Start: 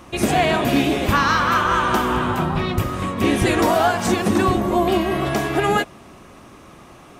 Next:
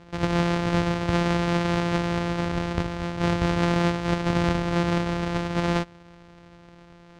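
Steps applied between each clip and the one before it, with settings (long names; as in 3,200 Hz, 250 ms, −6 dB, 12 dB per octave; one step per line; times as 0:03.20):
samples sorted by size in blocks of 256 samples
high-frequency loss of the air 120 metres
level −5 dB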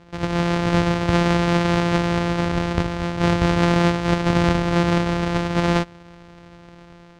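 automatic gain control gain up to 5 dB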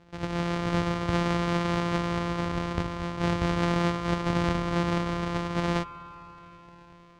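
spring reverb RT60 3.7 s, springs 51 ms, chirp 70 ms, DRR 14 dB
level −8 dB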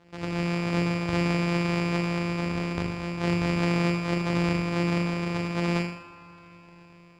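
low-shelf EQ 120 Hz −11 dB
on a send: flutter between parallel walls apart 6.9 metres, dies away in 0.65 s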